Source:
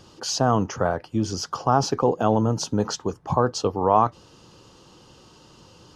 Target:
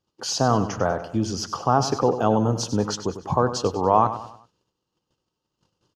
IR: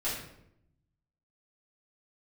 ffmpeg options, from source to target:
-filter_complex "[0:a]agate=range=-31dB:threshold=-46dB:ratio=16:detection=peak,asplit=2[link_01][link_02];[link_02]aecho=0:1:97|194|291|388:0.266|0.112|0.0469|0.0197[link_03];[link_01][link_03]amix=inputs=2:normalize=0"

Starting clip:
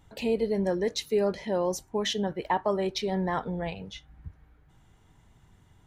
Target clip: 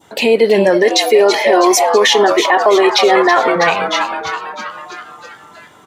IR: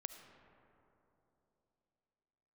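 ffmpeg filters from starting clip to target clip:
-filter_complex "[0:a]asettb=1/sr,asplit=3[link_01][link_02][link_03];[link_01]atrim=end=0.824[link_04];[link_02]atrim=start=0.82:end=3.56,asetpts=PTS-STARTPTS,afade=type=in:duration=0.004:curve=qsin,afade=type=out:start_time=2.736:duration=0.004:curve=qsin,aecho=1:1:2.8:0.9,atrim=end_sample=120834[link_05];[link_03]atrim=start=3.556[link_06];[link_04][link_05]acrossfade=duration=0.004:curve1=hsin:curve2=qsin[link_07];[link_07][link_06]acrossfade=duration=0.004:curve1=qsin:curve2=hsin,asplit=8[link_08][link_09][link_10][link_11][link_12][link_13][link_14][link_15];[link_09]adelay=325,afreqshift=140,volume=-11dB[link_16];[link_10]adelay=650,afreqshift=280,volume=-15.2dB[link_17];[link_11]adelay=975,afreqshift=420,volume=-19.3dB[link_18];[link_12]adelay=1300,afreqshift=560,volume=-23.5dB[link_19];[link_13]adelay=1625,afreqshift=700,volume=-27.6dB[link_20];[link_14]adelay=1950,afreqshift=840,volume=-31.8dB[link_21];[link_15]adelay=2275,afreqshift=980,volume=-35.9dB[link_22];[link_08][link_16][link_17][link_18][link_19][link_20][link_21][link_22]amix=inputs=8:normalize=0,adynamicequalizer=threshold=0.00562:dfrequency=2000:dqfactor=1:tfrequency=2000:tqfactor=1:attack=5:release=100:ratio=0.375:range=3.5:mode=boostabove:tftype=bell,highpass=320,alimiter=level_in=20.5dB:limit=-1dB:release=50:level=0:latency=1,volume=-1dB"

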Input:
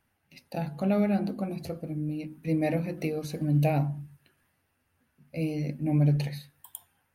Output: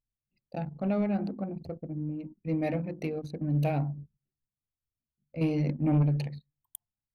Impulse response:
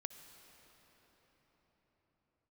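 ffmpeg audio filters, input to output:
-filter_complex "[0:a]asettb=1/sr,asplit=3[link_01][link_02][link_03];[link_01]atrim=end=5.414[link_04];[link_02]atrim=start=5.41:end=6.03,asetpts=PTS-STARTPTS,afade=type=in:duration=0.004:curve=qsin,afade=type=out:start_time=0.616:duration=0.004:curve=qsin,acontrast=56[link_05];[link_03]atrim=start=6.026[link_06];[link_04][link_05]acrossfade=duration=0.004:curve1=hsin:curve2=qsin[link_07];[link_07][link_06]acrossfade=duration=0.004:curve1=qsin:curve2=hsin,asoftclip=type=tanh:threshold=-16.5dB,anlmdn=2.51,volume=-2dB"

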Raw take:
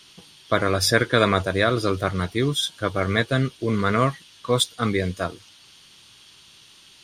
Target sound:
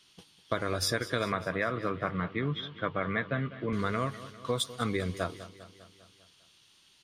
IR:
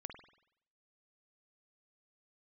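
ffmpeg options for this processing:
-filter_complex "[0:a]agate=range=-7dB:threshold=-45dB:ratio=16:detection=peak,acompressor=threshold=-21dB:ratio=6,asettb=1/sr,asplit=3[link_01][link_02][link_03];[link_01]atrim=end=1.324[link_04];[link_02]atrim=start=1.32:end=3.73,asetpts=PTS-STARTPTS,afade=type=in:duration=0.004:curve=qsin,afade=type=out:start_time=2.406:duration=0.004:curve=qsin,highpass=130,equalizer=frequency=160:width_type=q:width=4:gain=7,equalizer=frequency=360:width_type=q:width=4:gain=-5,equalizer=frequency=1100:width_type=q:width=4:gain=4,equalizer=frequency=1900:width_type=q:width=4:gain=4,lowpass=frequency=2800:width=0.5412,lowpass=frequency=2800:width=1.3066[link_05];[link_03]atrim=start=3.726[link_06];[link_04][link_05]acrossfade=duration=0.004:curve1=hsin:curve2=qsin[link_07];[link_07][link_06]acrossfade=duration=0.004:curve1=qsin:curve2=hsin,aecho=1:1:200|400|600|800|1000|1200:0.168|0.099|0.0584|0.0345|0.0203|0.012,volume=-5dB"

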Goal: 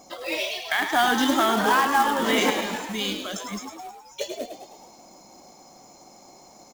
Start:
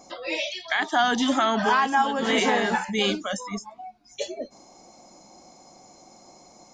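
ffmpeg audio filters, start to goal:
ffmpeg -i in.wav -filter_complex "[0:a]asettb=1/sr,asplit=3[link_01][link_02][link_03];[link_01]atrim=end=2.504[link_04];[link_02]atrim=start=2.5:end=4.21,asetpts=PTS-STARTPTS,afade=type=in:duration=0.004:curve=qsin,afade=type=out:start_time=1.706:duration=0.004:curve=qsin,acrossover=split=180|3000[link_05][link_06][link_07];[link_06]acompressor=threshold=-33dB:ratio=6[link_08];[link_05][link_08][link_07]amix=inputs=3:normalize=0[link_09];[link_03]atrim=start=4.206[link_10];[link_04][link_09]acrossfade=duration=0.004:curve1=hsin:curve2=qsin[link_11];[link_11][link_10]acrossfade=duration=0.004:curve1=qsin:curve2=hsin,asplit=8[link_12][link_13][link_14][link_15][link_16][link_17][link_18][link_19];[link_13]adelay=105,afreqshift=60,volume=-7.5dB[link_20];[link_14]adelay=210,afreqshift=120,volume=-12.5dB[link_21];[link_15]adelay=315,afreqshift=180,volume=-17.6dB[link_22];[link_16]adelay=420,afreqshift=240,volume=-22.6dB[link_23];[link_17]adelay=525,afreqshift=300,volume=-27.6dB[link_24];[link_18]adelay=630,afreqshift=360,volume=-32.7dB[link_25];[link_19]adelay=735,afreqshift=420,volume=-37.7dB[link_26];[link_12][link_20][link_21][link_22][link_23][link_24][link_25][link_26]amix=inputs=8:normalize=0,acrusher=bits=3:mode=log:mix=0:aa=0.000001" out.wav

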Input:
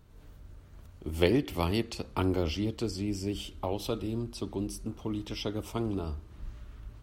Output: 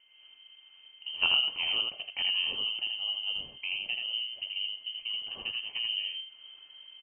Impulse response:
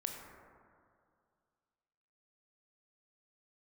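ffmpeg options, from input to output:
-af "aeval=exprs='val(0)+0.00112*sin(2*PI*1100*n/s)':channel_layout=same,highpass=71,equalizer=frequency=1200:width=2.4:gain=-12.5,aecho=1:1:81:0.668,lowpass=frequency=2700:width_type=q:width=0.5098,lowpass=frequency=2700:width_type=q:width=0.6013,lowpass=frequency=2700:width_type=q:width=0.9,lowpass=frequency=2700:width_type=q:width=2.563,afreqshift=-3200,volume=-2dB"

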